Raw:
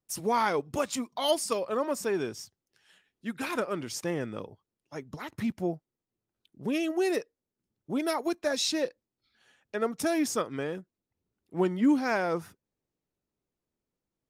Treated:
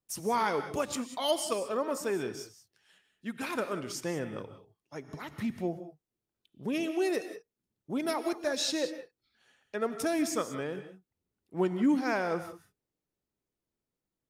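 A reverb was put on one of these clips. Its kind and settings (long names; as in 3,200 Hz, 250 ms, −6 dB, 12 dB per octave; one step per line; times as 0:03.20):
reverb whose tail is shaped and stops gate 210 ms rising, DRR 10 dB
level −2.5 dB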